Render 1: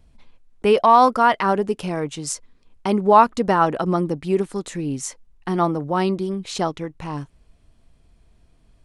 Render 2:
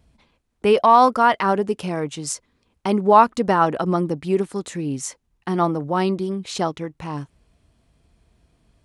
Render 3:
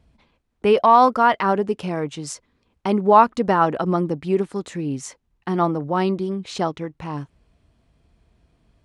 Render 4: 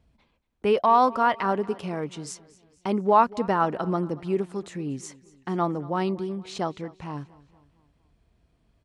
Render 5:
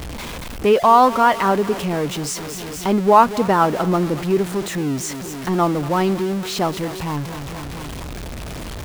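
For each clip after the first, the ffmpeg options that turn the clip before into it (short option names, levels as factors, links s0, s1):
-af "highpass=51"
-af "highshelf=f=7300:g=-11.5"
-af "aecho=1:1:232|464|696|928:0.0891|0.0446|0.0223|0.0111,volume=0.531"
-af "aeval=exprs='val(0)+0.5*0.0299*sgn(val(0))':c=same,volume=2"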